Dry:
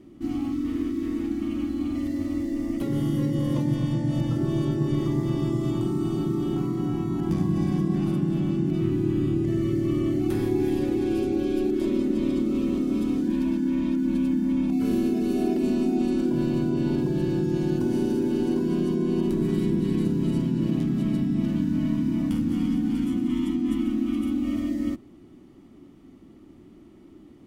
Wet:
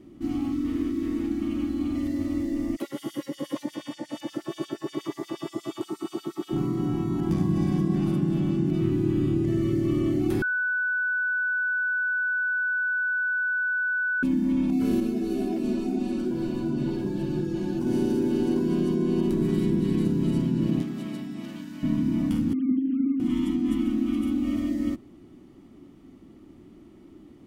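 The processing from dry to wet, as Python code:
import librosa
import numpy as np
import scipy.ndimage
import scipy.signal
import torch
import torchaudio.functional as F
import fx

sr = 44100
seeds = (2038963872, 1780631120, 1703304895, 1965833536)

y = fx.filter_lfo_highpass(x, sr, shape='sine', hz=8.4, low_hz=330.0, high_hz=4900.0, q=1.2, at=(2.75, 6.51), fade=0.02)
y = fx.ensemble(y, sr, at=(15.0, 17.87))
y = fx.highpass(y, sr, hz=fx.line((20.81, 430.0), (21.82, 1400.0)), slope=6, at=(20.81, 21.82), fade=0.02)
y = fx.sine_speech(y, sr, at=(22.53, 23.2))
y = fx.edit(y, sr, fx.bleep(start_s=10.42, length_s=3.81, hz=1490.0, db=-23.0), tone=tone)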